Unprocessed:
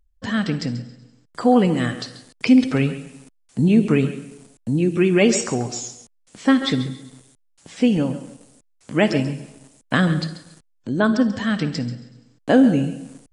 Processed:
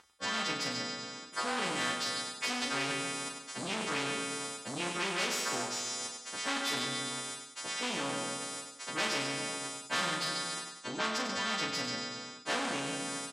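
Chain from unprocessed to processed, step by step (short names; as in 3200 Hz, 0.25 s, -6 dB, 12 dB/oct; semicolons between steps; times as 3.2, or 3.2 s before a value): frequency quantiser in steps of 2 st; soft clip -16.5 dBFS, distortion -10 dB; high shelf 2200 Hz +8.5 dB; doubler 36 ms -7 dB; reverse; compressor 6:1, threshold -31 dBFS, peak gain reduction 18.5 dB; reverse; BPF 270–5500 Hz; bell 1200 Hz +9.5 dB 1.5 oct; feedback echo 98 ms, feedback 32%, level -11 dB; spectral compressor 2:1; gain -2 dB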